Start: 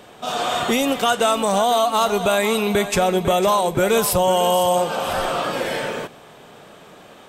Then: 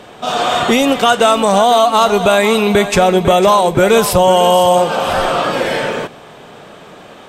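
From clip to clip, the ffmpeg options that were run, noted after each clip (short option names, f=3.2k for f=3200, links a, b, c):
-af "highshelf=f=9.6k:g=-11,volume=7.5dB"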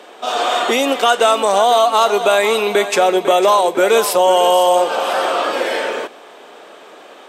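-af "highpass=f=300:w=0.5412,highpass=f=300:w=1.3066,volume=-2dB"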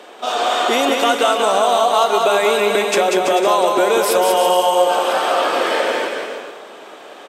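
-filter_complex "[0:a]acompressor=threshold=-16dB:ratio=2,asplit=2[a][b];[b]aecho=0:1:190|332.5|439.4|519.5|579.6:0.631|0.398|0.251|0.158|0.1[c];[a][c]amix=inputs=2:normalize=0"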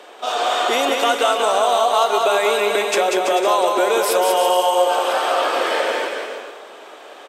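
-af "highpass=320,volume=-1.5dB"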